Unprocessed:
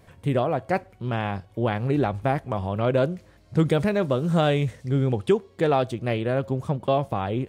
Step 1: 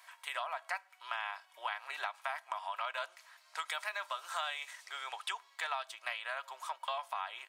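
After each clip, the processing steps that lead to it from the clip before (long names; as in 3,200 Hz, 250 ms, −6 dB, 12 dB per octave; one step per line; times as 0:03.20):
Butterworth high-pass 890 Hz 36 dB per octave
comb filter 3.1 ms, depth 39%
downward compressor 4 to 1, threshold −38 dBFS, peak gain reduction 12 dB
level +2.5 dB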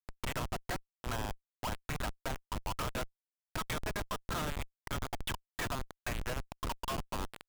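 parametric band 3,000 Hz +2 dB 1 octave
transient designer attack +10 dB, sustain −11 dB
comparator with hysteresis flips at −33.5 dBFS
level +1 dB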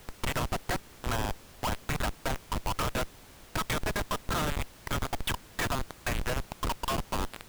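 background noise pink −58 dBFS
level +6 dB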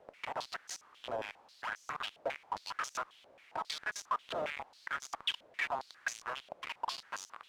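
band-pass on a step sequencer 7.4 Hz 590–6,100 Hz
level +4 dB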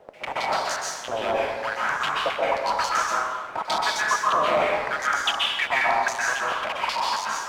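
dense smooth reverb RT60 1.6 s, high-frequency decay 0.5×, pre-delay 115 ms, DRR −6 dB
level +9 dB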